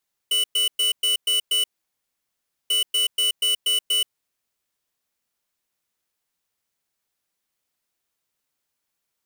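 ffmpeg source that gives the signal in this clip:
ffmpeg -f lavfi -i "aevalsrc='0.0944*(2*lt(mod(2970*t,1),0.5)-1)*clip(min(mod(mod(t,2.39),0.24),0.13-mod(mod(t,2.39),0.24))/0.005,0,1)*lt(mod(t,2.39),1.44)':duration=4.78:sample_rate=44100" out.wav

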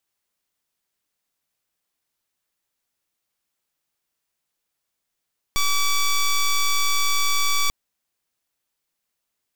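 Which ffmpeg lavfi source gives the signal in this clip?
ffmpeg -f lavfi -i "aevalsrc='0.112*(2*lt(mod(1150*t,1),0.1)-1)':duration=2.14:sample_rate=44100" out.wav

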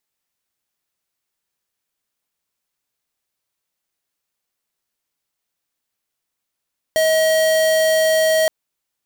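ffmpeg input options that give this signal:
ffmpeg -f lavfi -i "aevalsrc='0.168*(2*lt(mod(636*t,1),0.5)-1)':duration=1.52:sample_rate=44100" out.wav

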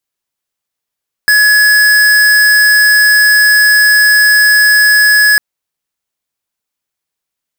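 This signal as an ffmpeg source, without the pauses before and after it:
ffmpeg -f lavfi -i "aevalsrc='0.447*(2*lt(mod(1690*t,1),0.5)-1)':duration=4.1:sample_rate=44100" out.wav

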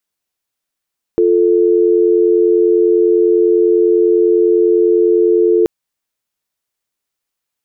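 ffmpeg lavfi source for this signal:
ffmpeg -f lavfi -i "aevalsrc='0.282*(sin(2*PI*350*t)+sin(2*PI*440*t))':duration=4.48:sample_rate=44100" out.wav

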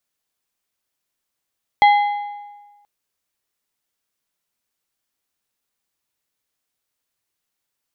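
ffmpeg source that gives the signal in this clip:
ffmpeg -f lavfi -i "aevalsrc='0.447*pow(10,-3*t/1.33)*sin(2*PI*822*t)+0.168*pow(10,-3*t/1.01)*sin(2*PI*2055*t)+0.0631*pow(10,-3*t/0.877)*sin(2*PI*3288*t)+0.0237*pow(10,-3*t/0.821)*sin(2*PI*4110*t)':duration=1.03:sample_rate=44100" out.wav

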